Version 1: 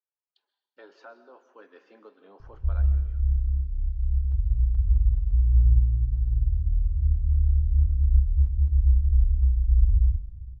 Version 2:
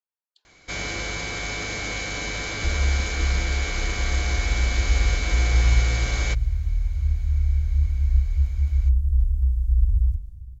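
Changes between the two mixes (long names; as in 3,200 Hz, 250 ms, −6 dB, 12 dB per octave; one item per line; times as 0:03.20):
first sound: unmuted
master: remove high-frequency loss of the air 270 metres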